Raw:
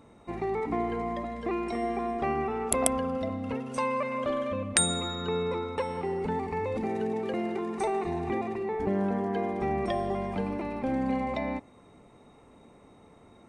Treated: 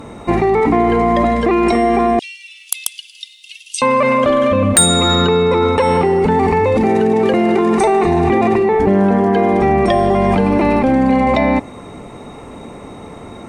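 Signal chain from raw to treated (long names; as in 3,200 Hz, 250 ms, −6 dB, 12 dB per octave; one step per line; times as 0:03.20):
0:02.19–0:03.82: Butterworth high-pass 2,900 Hz 48 dB per octave
in parallel at −2.5 dB: compressor whose output falls as the input rises −34 dBFS, ratio −0.5
on the sum: sine wavefolder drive 12 dB, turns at −1.5 dBFS
level −1 dB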